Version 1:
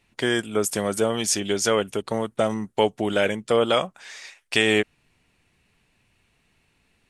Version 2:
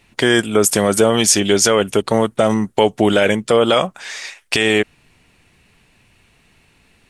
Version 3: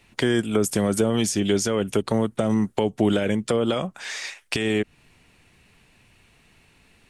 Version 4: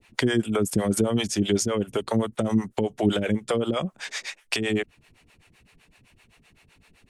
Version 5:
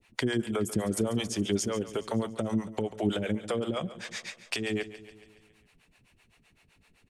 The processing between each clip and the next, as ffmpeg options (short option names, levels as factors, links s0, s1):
-af "alimiter=level_in=3.98:limit=0.891:release=50:level=0:latency=1,volume=0.891"
-filter_complex "[0:a]acrossover=split=340[s0][s1];[s1]acompressor=threshold=0.0794:ratio=10[s2];[s0][s2]amix=inputs=2:normalize=0,volume=0.75"
-filter_complex "[0:a]acrossover=split=430[s0][s1];[s0]aeval=exprs='val(0)*(1-1/2+1/2*cos(2*PI*7.8*n/s))':c=same[s2];[s1]aeval=exprs='val(0)*(1-1/2-1/2*cos(2*PI*7.8*n/s))':c=same[s3];[s2][s3]amix=inputs=2:normalize=0,volume=1.41"
-af "aecho=1:1:140|280|420|560|700|840:0.178|0.103|0.0598|0.0347|0.0201|0.0117,volume=0.501"